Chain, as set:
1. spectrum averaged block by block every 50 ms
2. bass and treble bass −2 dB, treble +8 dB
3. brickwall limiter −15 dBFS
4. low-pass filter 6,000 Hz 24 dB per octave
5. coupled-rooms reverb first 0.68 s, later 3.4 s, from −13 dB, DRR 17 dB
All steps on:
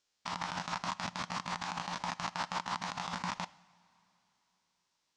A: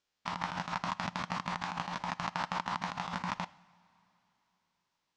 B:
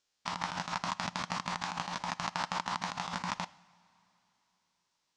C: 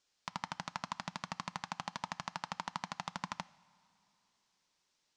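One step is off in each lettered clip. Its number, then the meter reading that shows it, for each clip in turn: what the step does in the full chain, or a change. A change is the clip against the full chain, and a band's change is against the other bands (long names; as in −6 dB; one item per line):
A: 2, 8 kHz band −7.0 dB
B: 3, change in crest factor +3.0 dB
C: 1, change in crest factor +5.0 dB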